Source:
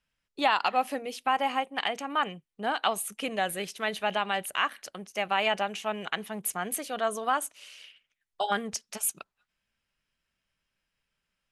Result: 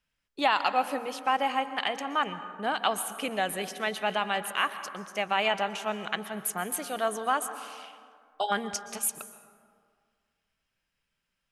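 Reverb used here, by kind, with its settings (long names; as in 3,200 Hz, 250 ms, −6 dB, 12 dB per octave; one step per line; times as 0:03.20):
dense smooth reverb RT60 2 s, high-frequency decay 0.4×, pre-delay 110 ms, DRR 11.5 dB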